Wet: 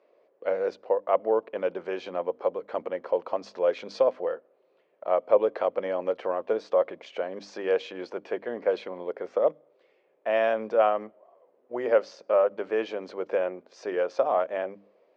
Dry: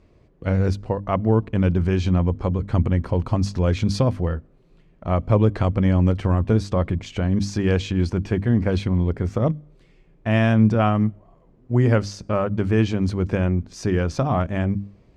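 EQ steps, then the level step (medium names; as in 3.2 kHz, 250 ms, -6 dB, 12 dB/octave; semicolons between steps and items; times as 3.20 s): ladder high-pass 460 Hz, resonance 55%; distance through air 170 m; +5.5 dB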